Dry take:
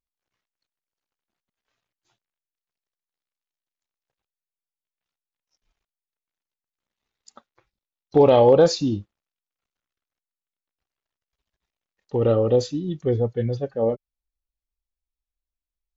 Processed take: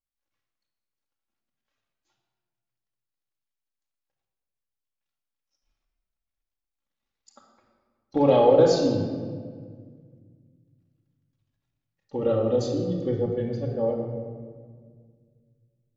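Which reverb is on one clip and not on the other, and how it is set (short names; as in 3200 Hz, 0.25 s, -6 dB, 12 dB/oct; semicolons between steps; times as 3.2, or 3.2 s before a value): shoebox room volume 2600 m³, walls mixed, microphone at 2.3 m; gain -7 dB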